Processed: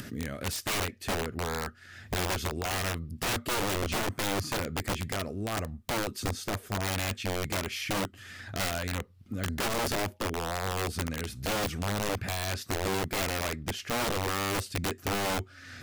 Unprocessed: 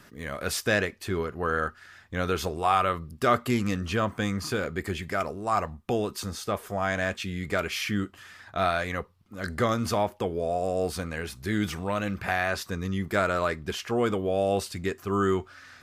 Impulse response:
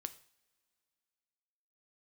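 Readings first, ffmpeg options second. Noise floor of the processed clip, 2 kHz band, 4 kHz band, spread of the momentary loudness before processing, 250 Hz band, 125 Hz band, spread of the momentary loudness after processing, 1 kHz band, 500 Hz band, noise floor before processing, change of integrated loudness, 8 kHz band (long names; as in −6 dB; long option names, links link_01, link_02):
−53 dBFS, −3.5 dB, +2.5 dB, 8 LU, −5.5 dB, −1.5 dB, 5 LU, −5.5 dB, −6.5 dB, −54 dBFS, −3.5 dB, +4.5 dB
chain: -af "acompressor=mode=upward:threshold=-28dB:ratio=2.5,equalizer=frequency=100:width_type=o:width=0.67:gain=10,equalizer=frequency=250:width_type=o:width=0.67:gain=7,equalizer=frequency=1000:width_type=o:width=0.67:gain=-10,aeval=exprs='(mod(10*val(0)+1,2)-1)/10':channel_layout=same,volume=-4.5dB"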